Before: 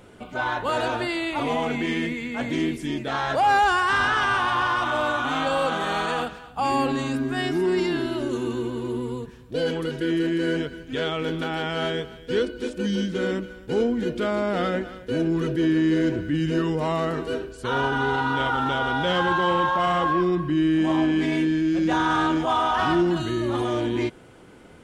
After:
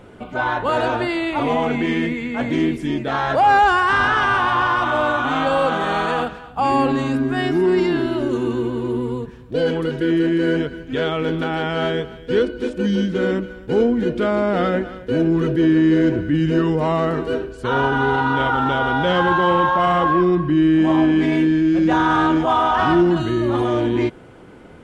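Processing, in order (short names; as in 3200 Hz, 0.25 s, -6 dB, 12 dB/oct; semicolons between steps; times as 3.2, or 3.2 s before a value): high shelf 3500 Hz -10.5 dB; gain +6 dB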